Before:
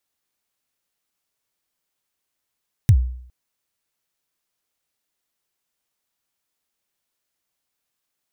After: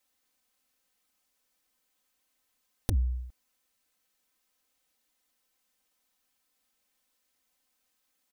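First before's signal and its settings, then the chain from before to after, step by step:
kick drum length 0.41 s, from 130 Hz, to 62 Hz, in 71 ms, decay 0.62 s, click on, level -6 dB
soft clip -10.5 dBFS; compressor 6:1, threshold -25 dBFS; comb 3.9 ms, depth 95%

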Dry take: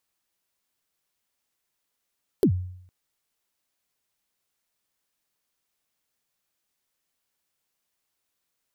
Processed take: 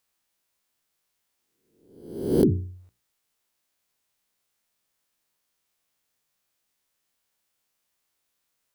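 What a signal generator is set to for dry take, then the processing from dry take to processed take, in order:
kick drum length 0.46 s, from 450 Hz, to 91 Hz, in 82 ms, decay 0.69 s, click on, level -13 dB
spectral swells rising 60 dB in 0.79 s; notches 60/120/180/240/300/360/420 Hz

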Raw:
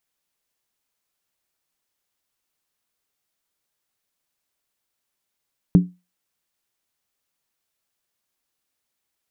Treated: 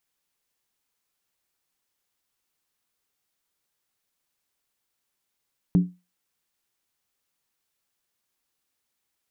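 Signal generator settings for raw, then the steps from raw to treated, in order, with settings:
skin hit, lowest mode 179 Hz, decay 0.25 s, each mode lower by 9.5 dB, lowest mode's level -5.5 dB
notch 630 Hz, Q 12; limiter -11.5 dBFS

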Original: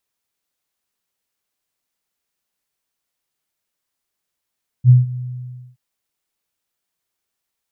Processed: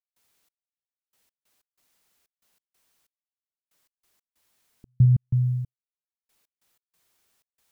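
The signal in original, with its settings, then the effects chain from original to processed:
ADSR sine 125 Hz, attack 55 ms, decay 0.162 s, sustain -19 dB, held 0.31 s, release 0.614 s -3.5 dBFS
in parallel at -1 dB: negative-ratio compressor -23 dBFS, ratio -1; on the sum: step gate ".xx....x.x.xxx.x" 93 bpm -60 dB

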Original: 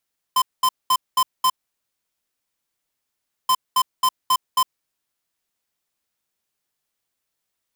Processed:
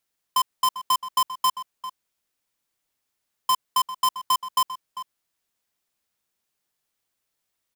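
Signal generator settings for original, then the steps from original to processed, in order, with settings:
beep pattern square 1030 Hz, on 0.06 s, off 0.21 s, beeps 5, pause 1.99 s, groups 2, -16.5 dBFS
compressor, threshold -19 dBFS; outdoor echo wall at 68 m, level -12 dB

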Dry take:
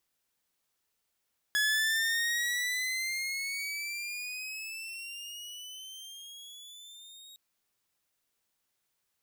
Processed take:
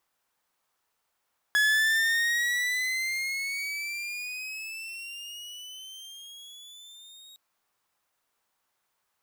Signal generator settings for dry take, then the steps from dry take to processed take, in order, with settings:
gliding synth tone saw, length 5.81 s, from 1690 Hz, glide +14 st, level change -24 dB, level -22 dB
bell 1000 Hz +10.5 dB 1.8 oct; modulation noise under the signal 27 dB

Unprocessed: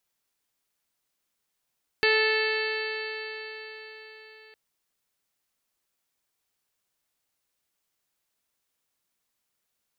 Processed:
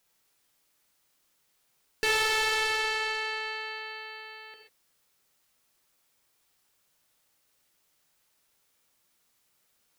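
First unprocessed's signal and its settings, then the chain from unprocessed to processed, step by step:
stretched partials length 2.51 s, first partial 435 Hz, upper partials -10/-12/0/-5.5/-3.5/-10.5/-16/-10.5/-7 dB, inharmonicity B 0.00069, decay 4.73 s, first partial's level -23 dB
in parallel at +1 dB: limiter -18.5 dBFS; on the sum: soft clip -23 dBFS; non-linear reverb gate 0.16 s flat, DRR 2.5 dB

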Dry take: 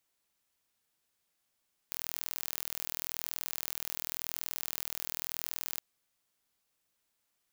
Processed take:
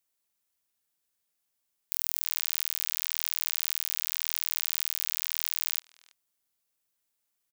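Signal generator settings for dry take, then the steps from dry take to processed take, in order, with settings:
pulse train 40.9/s, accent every 0, -9 dBFS 3.88 s
high shelf 6400 Hz +7.5 dB; sample leveller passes 3; speakerphone echo 0.33 s, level -13 dB

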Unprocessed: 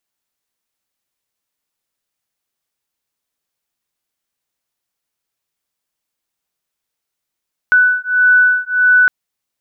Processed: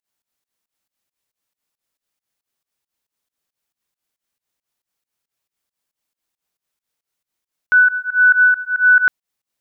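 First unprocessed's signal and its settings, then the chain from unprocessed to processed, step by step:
beating tones 1490 Hz, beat 1.6 Hz, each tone -12 dBFS 1.36 s
pump 137 bpm, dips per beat 2, -23 dB, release 0.135 s

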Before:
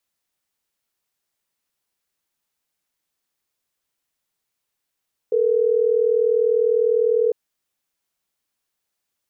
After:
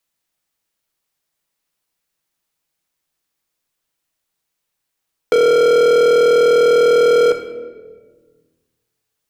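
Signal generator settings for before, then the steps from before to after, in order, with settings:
call progress tone ringback tone, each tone -18 dBFS
sample leveller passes 5; shoebox room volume 570 m³, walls mixed, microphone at 0.63 m; three-band squash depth 40%

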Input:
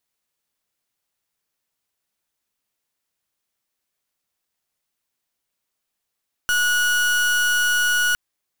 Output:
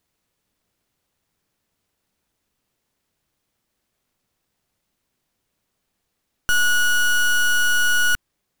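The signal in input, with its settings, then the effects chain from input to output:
pulse 1460 Hz, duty 37% -19 dBFS 1.66 s
half-waves squared off; low shelf 450 Hz +11 dB; vocal rider

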